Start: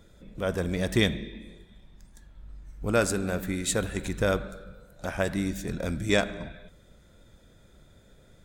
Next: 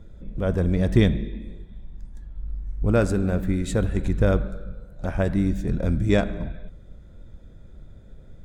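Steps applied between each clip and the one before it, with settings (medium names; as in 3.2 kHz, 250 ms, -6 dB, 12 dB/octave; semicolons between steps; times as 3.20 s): tilt EQ -3 dB/octave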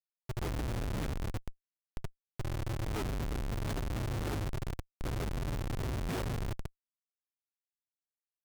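feedback comb 130 Hz, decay 0.55 s, harmonics all, mix 50%; frequency shift -150 Hz; Schmitt trigger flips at -33.5 dBFS; trim -4 dB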